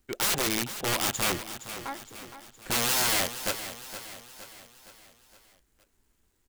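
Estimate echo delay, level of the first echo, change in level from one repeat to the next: 465 ms, −12.0 dB, −6.0 dB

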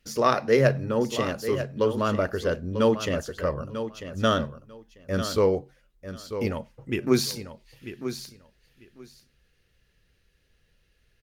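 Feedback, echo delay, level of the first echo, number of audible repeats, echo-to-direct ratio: 17%, 944 ms, −10.5 dB, 2, −10.5 dB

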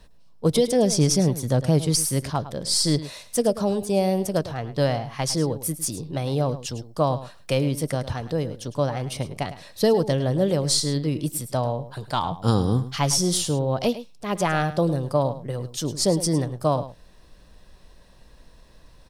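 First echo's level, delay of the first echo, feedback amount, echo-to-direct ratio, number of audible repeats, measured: −14.0 dB, 106 ms, repeats not evenly spaced, −14.0 dB, 1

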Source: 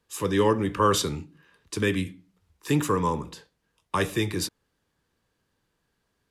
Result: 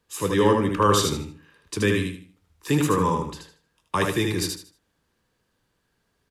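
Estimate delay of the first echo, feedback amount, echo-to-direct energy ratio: 77 ms, 28%, −3.5 dB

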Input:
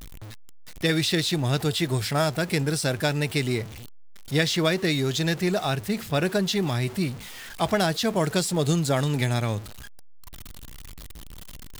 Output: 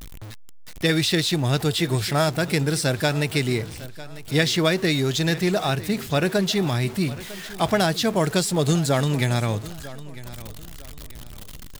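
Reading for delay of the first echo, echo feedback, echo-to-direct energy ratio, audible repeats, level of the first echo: 951 ms, 32%, −17.0 dB, 2, −17.5 dB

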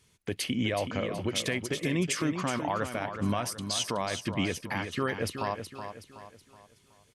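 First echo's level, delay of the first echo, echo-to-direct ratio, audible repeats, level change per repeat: −8.5 dB, 373 ms, −7.5 dB, 4, −7.5 dB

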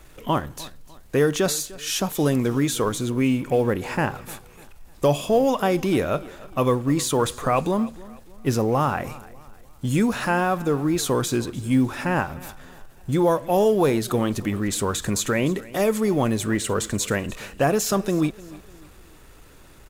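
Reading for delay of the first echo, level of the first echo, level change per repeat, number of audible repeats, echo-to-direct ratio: 300 ms, −20.0 dB, −8.5 dB, 2, −19.5 dB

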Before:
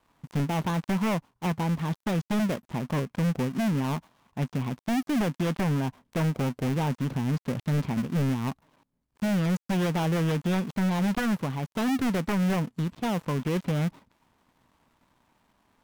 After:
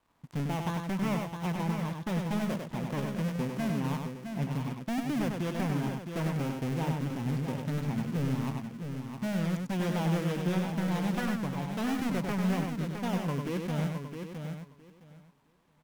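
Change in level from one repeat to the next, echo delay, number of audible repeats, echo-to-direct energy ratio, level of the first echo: repeats not evenly spaced, 98 ms, 5, −2.0 dB, −4.5 dB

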